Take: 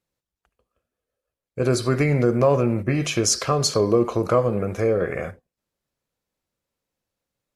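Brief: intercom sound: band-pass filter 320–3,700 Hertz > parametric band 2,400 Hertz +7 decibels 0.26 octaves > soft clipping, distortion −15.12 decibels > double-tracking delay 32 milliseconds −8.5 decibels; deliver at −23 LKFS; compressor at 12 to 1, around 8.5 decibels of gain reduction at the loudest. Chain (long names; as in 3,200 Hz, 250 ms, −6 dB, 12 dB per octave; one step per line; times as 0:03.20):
downward compressor 12 to 1, threshold −21 dBFS
band-pass filter 320–3,700 Hz
parametric band 2,400 Hz +7 dB 0.26 octaves
soft clipping −22 dBFS
double-tracking delay 32 ms −8.5 dB
level +7.5 dB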